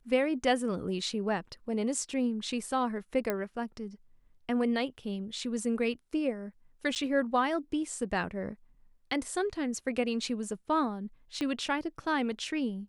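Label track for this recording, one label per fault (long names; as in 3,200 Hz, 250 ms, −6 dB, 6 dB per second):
3.300000	3.300000	click −16 dBFS
6.950000	6.960000	drop-out 9.3 ms
11.410000	11.410000	click −21 dBFS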